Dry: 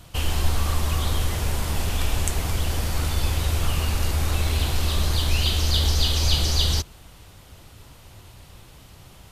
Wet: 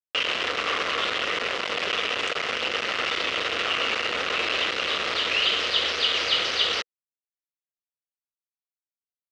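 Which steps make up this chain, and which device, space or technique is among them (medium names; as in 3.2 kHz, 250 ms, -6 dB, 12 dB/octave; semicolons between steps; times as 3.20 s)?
hand-held game console (bit crusher 4-bit; cabinet simulation 470–4600 Hz, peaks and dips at 480 Hz +8 dB, 860 Hz -7 dB, 1.3 kHz +6 dB, 2 kHz +5 dB, 2.8 kHz +7 dB, 4.4 kHz -3 dB)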